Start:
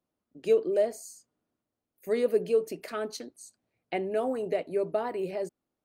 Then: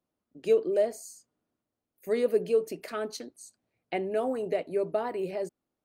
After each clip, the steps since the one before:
no processing that can be heard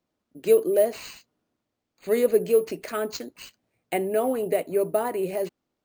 decimation without filtering 4×
level +5 dB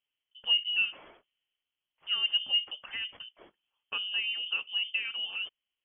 voice inversion scrambler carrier 3,300 Hz
level −8.5 dB

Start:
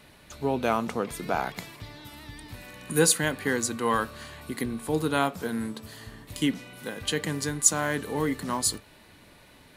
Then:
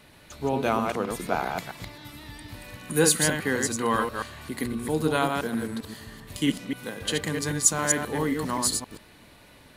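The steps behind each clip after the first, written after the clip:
delay that plays each chunk backwards 132 ms, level −4 dB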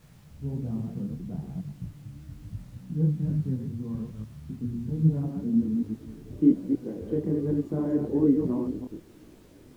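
low-pass filter sweep 160 Hz → 360 Hz, 0:04.93–0:06.38
background noise pink −61 dBFS
micro pitch shift up and down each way 41 cents
level +3.5 dB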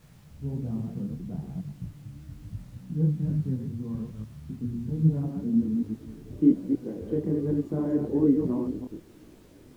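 no processing that can be heard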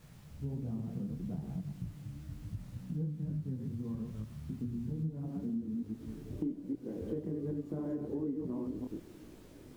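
downward compressor 6 to 1, threshold −33 dBFS, peak gain reduction 17.5 dB
on a send at −15 dB: convolution reverb RT60 0.60 s, pre-delay 70 ms
on the sum: level −1.5 dB

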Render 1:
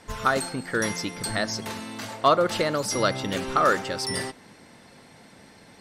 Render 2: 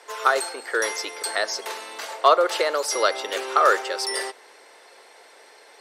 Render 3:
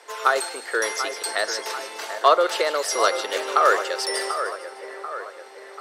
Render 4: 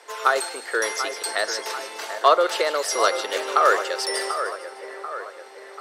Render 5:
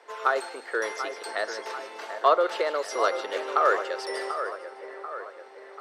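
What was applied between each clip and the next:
Chebyshev high-pass filter 400 Hz, order 4; level +3.5 dB
echo with a time of its own for lows and highs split 2,200 Hz, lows 739 ms, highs 152 ms, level −9.5 dB
no processing that can be heard
low-pass filter 1,900 Hz 6 dB per octave; level −3 dB

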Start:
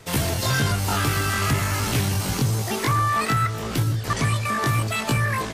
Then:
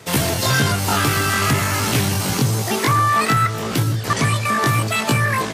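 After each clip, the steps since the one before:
high-pass filter 110 Hz
level +5.5 dB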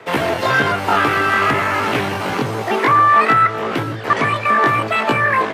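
three-way crossover with the lows and the highs turned down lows −15 dB, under 290 Hz, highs −22 dB, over 2,800 Hz
level +6 dB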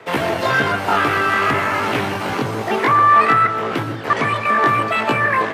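convolution reverb RT60 0.60 s, pre-delay 117 ms, DRR 12.5 dB
level −1.5 dB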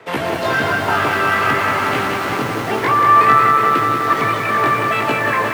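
feedback echo at a low word length 183 ms, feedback 80%, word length 6 bits, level −5 dB
level −1.5 dB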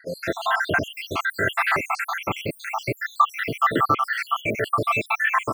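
time-frequency cells dropped at random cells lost 78%

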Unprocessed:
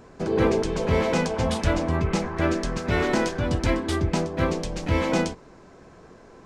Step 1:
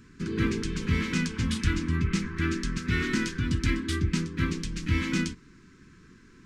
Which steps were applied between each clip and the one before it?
Chebyshev band-stop filter 270–1,600 Hz, order 2
level −1 dB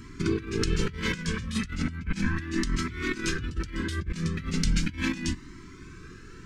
compressor whose output falls as the input rises −32 dBFS, ratio −0.5
flanger whose copies keep moving one way rising 0.36 Hz
level +8 dB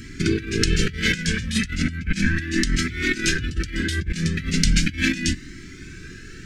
drawn EQ curve 290 Hz 0 dB, 670 Hz −6 dB, 950 Hz −23 dB, 1,600 Hz +4 dB
level +6 dB

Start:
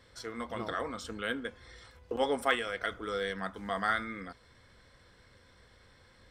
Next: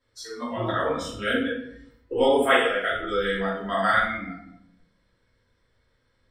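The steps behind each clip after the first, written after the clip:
noise reduction from a noise print of the clip's start 20 dB
rectangular room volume 160 cubic metres, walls mixed, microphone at 2.8 metres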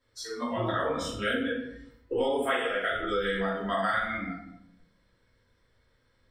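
downward compressor 5 to 1, threshold −25 dBFS, peak gain reduction 10.5 dB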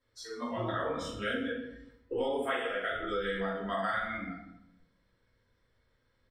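high-shelf EQ 6,700 Hz −5.5 dB
repeating echo 130 ms, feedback 42%, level −19.5 dB
level −4.5 dB

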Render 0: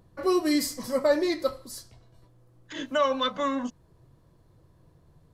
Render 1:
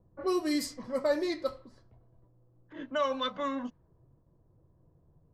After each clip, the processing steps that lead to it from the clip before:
low-pass that shuts in the quiet parts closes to 820 Hz, open at −20 dBFS
noise gate with hold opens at −52 dBFS
level −5.5 dB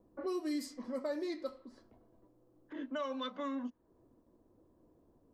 low shelf with overshoot 190 Hz −8.5 dB, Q 3
downward compressor 2 to 1, threshold −46 dBFS, peak gain reduction 13.5 dB
level +1.5 dB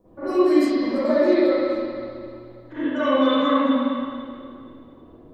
convolution reverb RT60 2.3 s, pre-delay 41 ms, DRR −14.5 dB
level +5 dB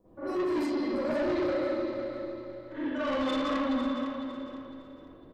soft clipping −20.5 dBFS, distortion −9 dB
on a send: repeating echo 505 ms, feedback 31%, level −10.5 dB
on the sum: level −5.5 dB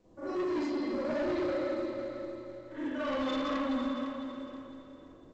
level −3 dB
mu-law 128 kbit/s 16,000 Hz

